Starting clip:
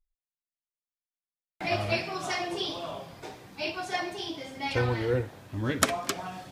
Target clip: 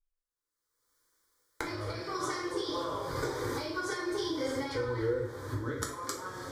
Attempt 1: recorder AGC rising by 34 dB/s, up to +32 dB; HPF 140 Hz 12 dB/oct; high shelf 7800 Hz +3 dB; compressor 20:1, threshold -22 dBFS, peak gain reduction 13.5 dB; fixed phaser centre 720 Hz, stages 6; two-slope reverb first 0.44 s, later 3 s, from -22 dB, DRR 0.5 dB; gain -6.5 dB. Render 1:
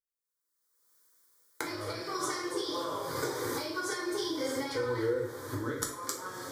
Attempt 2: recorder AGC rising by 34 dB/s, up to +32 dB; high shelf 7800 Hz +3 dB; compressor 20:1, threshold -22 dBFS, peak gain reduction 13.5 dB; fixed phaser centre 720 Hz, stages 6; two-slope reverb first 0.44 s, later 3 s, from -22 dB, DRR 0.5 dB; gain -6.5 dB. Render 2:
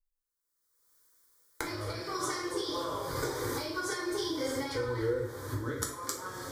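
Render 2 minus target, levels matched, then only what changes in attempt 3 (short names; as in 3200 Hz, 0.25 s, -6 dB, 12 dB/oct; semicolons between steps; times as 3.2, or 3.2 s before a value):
8000 Hz band +4.0 dB
change: high shelf 7800 Hz -8.5 dB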